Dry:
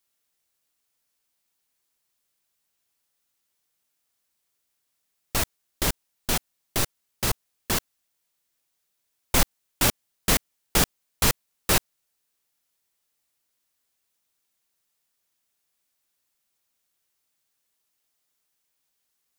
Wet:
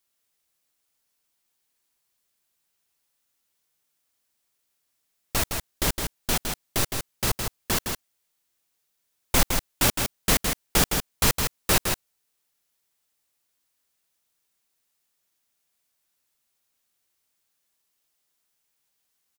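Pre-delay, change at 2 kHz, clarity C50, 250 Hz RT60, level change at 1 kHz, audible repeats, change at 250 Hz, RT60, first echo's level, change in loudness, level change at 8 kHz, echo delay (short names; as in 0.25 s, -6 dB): none, +1.0 dB, none, none, +1.0 dB, 1, +1.0 dB, none, -5.5 dB, +1.0 dB, +1.0 dB, 0.162 s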